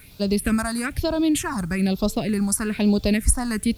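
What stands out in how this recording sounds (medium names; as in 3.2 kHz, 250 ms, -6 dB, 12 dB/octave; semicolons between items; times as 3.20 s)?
phasing stages 4, 1.1 Hz, lowest notch 450–1900 Hz; a quantiser's noise floor 10-bit, dither triangular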